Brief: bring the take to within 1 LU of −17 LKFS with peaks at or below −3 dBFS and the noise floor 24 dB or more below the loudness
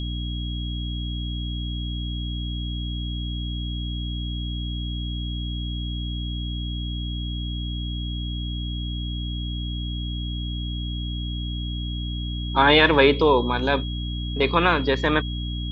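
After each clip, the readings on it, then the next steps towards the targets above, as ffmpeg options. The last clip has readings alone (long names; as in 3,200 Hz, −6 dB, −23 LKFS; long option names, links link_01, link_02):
mains hum 60 Hz; hum harmonics up to 300 Hz; level of the hum −26 dBFS; interfering tone 3,300 Hz; level of the tone −35 dBFS; integrated loudness −25.5 LKFS; sample peak −2.5 dBFS; target loudness −17.0 LKFS
→ -af "bandreject=frequency=60:width_type=h:width=6,bandreject=frequency=120:width_type=h:width=6,bandreject=frequency=180:width_type=h:width=6,bandreject=frequency=240:width_type=h:width=6,bandreject=frequency=300:width_type=h:width=6"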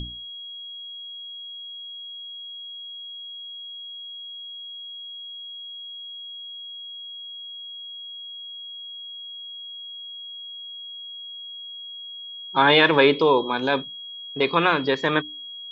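mains hum none found; interfering tone 3,300 Hz; level of the tone −35 dBFS
→ -af "bandreject=frequency=3300:width=30"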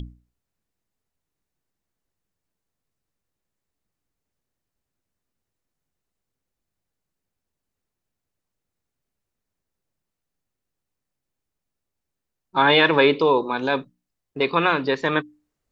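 interfering tone none found; integrated loudness −20.0 LKFS; sample peak −2.5 dBFS; target loudness −17.0 LKFS
→ -af "volume=3dB,alimiter=limit=-3dB:level=0:latency=1"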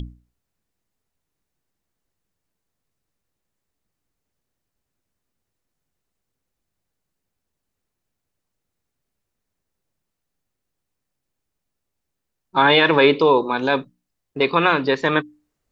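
integrated loudness −17.5 LKFS; sample peak −3.0 dBFS; background noise floor −81 dBFS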